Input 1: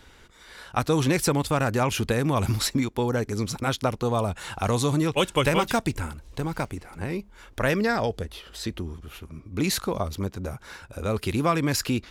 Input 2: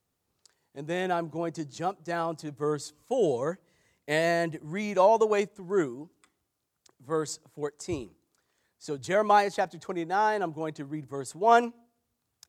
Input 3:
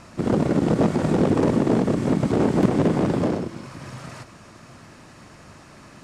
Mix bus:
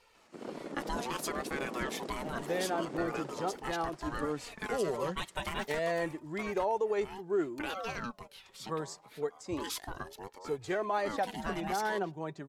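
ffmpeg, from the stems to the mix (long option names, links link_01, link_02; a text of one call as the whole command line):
ffmpeg -i stem1.wav -i stem2.wav -i stem3.wav -filter_complex "[0:a]lowshelf=frequency=220:gain=-11,aeval=exprs='val(0)*sin(2*PI*710*n/s+710*0.35/0.65*sin(2*PI*0.65*n/s))':channel_layout=same,volume=-4.5dB[link_01];[1:a]highshelf=frequency=4800:gain=-9,adelay=1600,volume=0.5dB[link_02];[2:a]highpass=330,adelay=150,volume=-18dB[link_03];[link_01][link_02]amix=inputs=2:normalize=0,flanger=delay=2.2:depth=3.1:regen=35:speed=0.29:shape=sinusoidal,alimiter=limit=-22.5dB:level=0:latency=1:release=118,volume=0dB[link_04];[link_03][link_04]amix=inputs=2:normalize=0" out.wav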